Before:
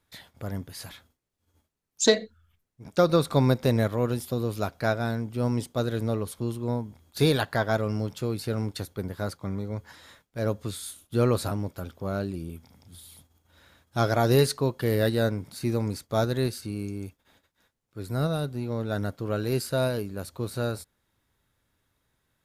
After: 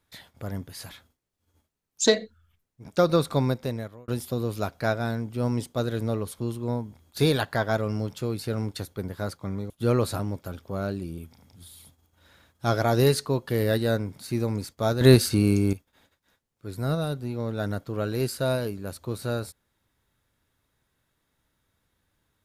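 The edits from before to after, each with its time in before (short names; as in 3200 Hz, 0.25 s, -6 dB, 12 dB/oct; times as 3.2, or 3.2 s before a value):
3.2–4.08 fade out
9.7–11.02 cut
16.33–17.05 gain +12 dB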